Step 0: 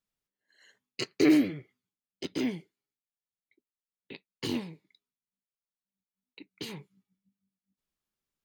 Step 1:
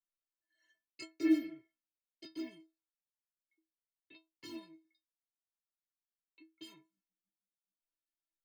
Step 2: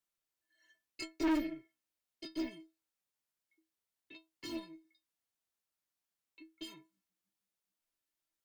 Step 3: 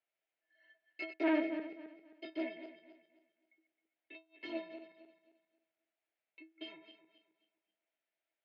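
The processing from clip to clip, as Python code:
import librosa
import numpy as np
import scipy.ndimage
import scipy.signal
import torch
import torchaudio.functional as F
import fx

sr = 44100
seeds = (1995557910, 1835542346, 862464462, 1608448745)

y1 = fx.stiff_resonator(x, sr, f0_hz=320.0, decay_s=0.25, stiffness=0.008)
y2 = fx.tube_stage(y1, sr, drive_db=35.0, bias=0.55)
y2 = F.gain(torch.from_numpy(y2), 7.5).numpy()
y3 = fx.reverse_delay_fb(y2, sr, ms=133, feedback_pct=54, wet_db=-10.0)
y3 = fx.cabinet(y3, sr, low_hz=360.0, low_slope=12, high_hz=3000.0, hz=(650.0, 1100.0, 2200.0), db=(9, -10, 4))
y3 = F.gain(torch.from_numpy(y3), 2.5).numpy()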